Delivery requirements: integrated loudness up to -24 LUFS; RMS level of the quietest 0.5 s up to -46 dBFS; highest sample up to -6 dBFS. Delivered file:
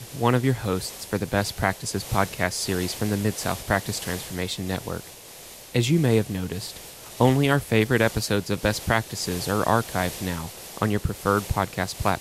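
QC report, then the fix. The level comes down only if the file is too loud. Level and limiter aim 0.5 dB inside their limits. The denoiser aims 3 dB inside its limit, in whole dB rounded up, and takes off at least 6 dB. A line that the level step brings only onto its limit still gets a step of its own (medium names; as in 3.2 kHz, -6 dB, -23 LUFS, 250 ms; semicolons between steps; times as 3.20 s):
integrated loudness -25.0 LUFS: pass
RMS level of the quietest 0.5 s -44 dBFS: fail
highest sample -4.5 dBFS: fail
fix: noise reduction 6 dB, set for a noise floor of -44 dBFS; peak limiter -6.5 dBFS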